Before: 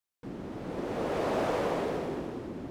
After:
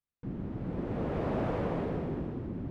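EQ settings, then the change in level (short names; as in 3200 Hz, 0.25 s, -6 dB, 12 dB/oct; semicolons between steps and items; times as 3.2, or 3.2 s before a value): tone controls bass +14 dB, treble -14 dB; -5.5 dB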